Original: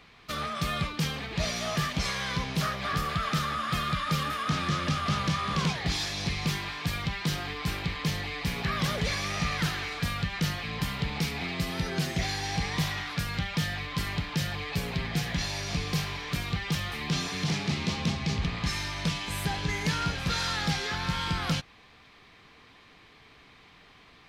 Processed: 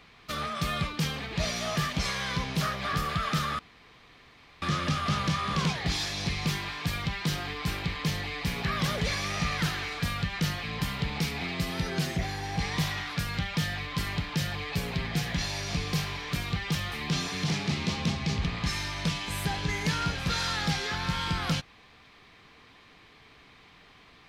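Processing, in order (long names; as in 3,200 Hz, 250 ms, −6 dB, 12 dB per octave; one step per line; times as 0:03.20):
0:03.59–0:04.62: fill with room tone
0:12.16–0:12.59: parametric band 5,400 Hz −8 dB 2.5 octaves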